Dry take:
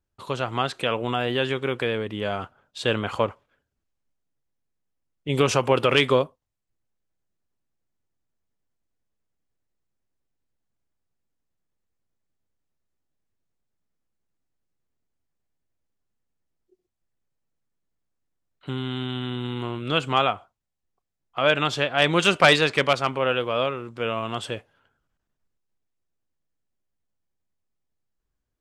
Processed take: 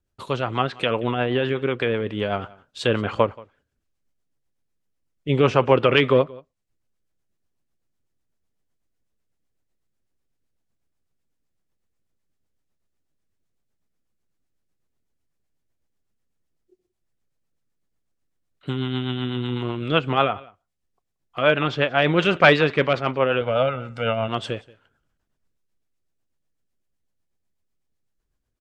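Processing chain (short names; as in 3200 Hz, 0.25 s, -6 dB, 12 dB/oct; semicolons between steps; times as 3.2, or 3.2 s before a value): 23.41–24.28 comb 1.4 ms, depth 75%; treble ducked by the level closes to 2700 Hz, closed at -21.5 dBFS; rotary speaker horn 8 Hz; echo 0.179 s -23 dB; gain +5 dB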